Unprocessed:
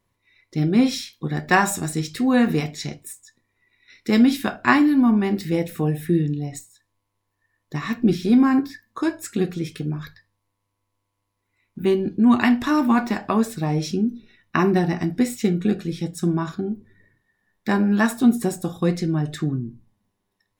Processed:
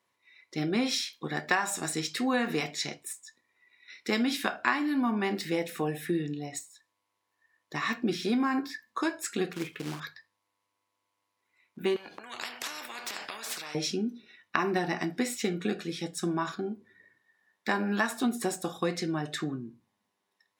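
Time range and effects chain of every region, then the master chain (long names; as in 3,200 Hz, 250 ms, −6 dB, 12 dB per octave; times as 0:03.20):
0:09.53–0:10.00: low-pass filter 2,600 Hz 24 dB per octave + floating-point word with a short mantissa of 2 bits
0:11.96–0:13.75: parametric band 240 Hz +4 dB 2.8 octaves + downward compressor 8 to 1, threshold −26 dBFS + every bin compressed towards the loudest bin 4 to 1
whole clip: meter weighting curve A; downward compressor 5 to 1, threshold −24 dBFS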